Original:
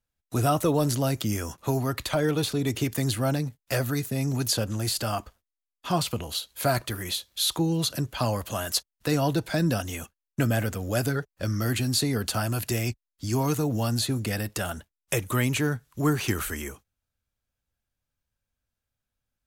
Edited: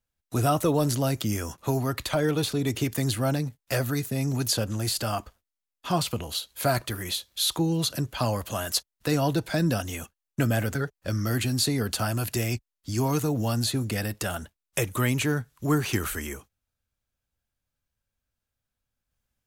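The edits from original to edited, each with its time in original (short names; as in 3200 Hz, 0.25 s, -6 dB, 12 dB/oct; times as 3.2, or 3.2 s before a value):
10.75–11.1 cut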